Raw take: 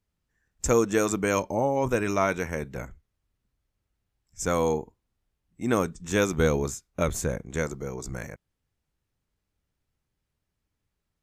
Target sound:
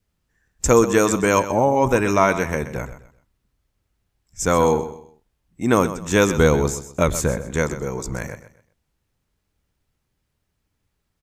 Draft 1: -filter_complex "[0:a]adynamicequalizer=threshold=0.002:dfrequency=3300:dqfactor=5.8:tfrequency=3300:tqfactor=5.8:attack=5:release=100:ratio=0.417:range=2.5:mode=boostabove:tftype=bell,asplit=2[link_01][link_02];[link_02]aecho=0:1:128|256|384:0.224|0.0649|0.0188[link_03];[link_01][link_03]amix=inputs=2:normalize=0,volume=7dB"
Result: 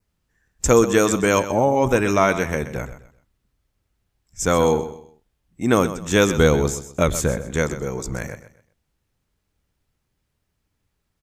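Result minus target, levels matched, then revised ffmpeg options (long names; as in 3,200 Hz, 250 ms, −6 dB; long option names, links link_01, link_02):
4,000 Hz band +3.0 dB
-filter_complex "[0:a]adynamicequalizer=threshold=0.002:dfrequency=980:dqfactor=5.8:tfrequency=980:tqfactor=5.8:attack=5:release=100:ratio=0.417:range=2.5:mode=boostabove:tftype=bell,asplit=2[link_01][link_02];[link_02]aecho=0:1:128|256|384:0.224|0.0649|0.0188[link_03];[link_01][link_03]amix=inputs=2:normalize=0,volume=7dB"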